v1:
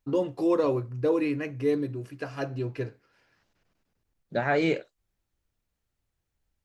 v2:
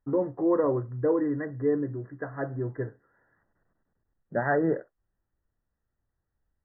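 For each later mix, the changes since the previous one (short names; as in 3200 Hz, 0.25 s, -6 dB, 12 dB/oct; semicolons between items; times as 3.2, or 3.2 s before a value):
master: add brick-wall FIR low-pass 2000 Hz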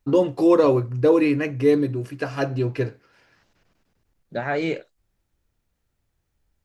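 first voice +8.0 dB; master: remove brick-wall FIR low-pass 2000 Hz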